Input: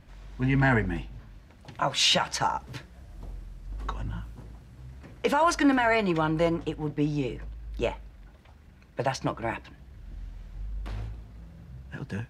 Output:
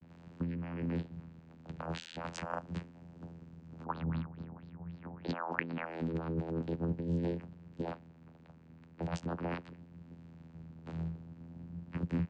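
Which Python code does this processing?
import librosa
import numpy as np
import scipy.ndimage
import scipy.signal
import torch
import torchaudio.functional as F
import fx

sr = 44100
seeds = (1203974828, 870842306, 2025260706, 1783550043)

y = fx.over_compress(x, sr, threshold_db=-31.0, ratio=-1.0)
y = fx.vocoder(y, sr, bands=8, carrier='saw', carrier_hz=83.8)
y = fx.filter_lfo_lowpass(y, sr, shape='sine', hz=fx.line((3.84, 5.6), (5.85, 2.0)), low_hz=770.0, high_hz=4500.0, q=5.2, at=(3.84, 5.85), fade=0.02)
y = fx.vibrato(y, sr, rate_hz=0.44, depth_cents=37.0)
y = F.gain(torch.from_numpy(y), -3.5).numpy()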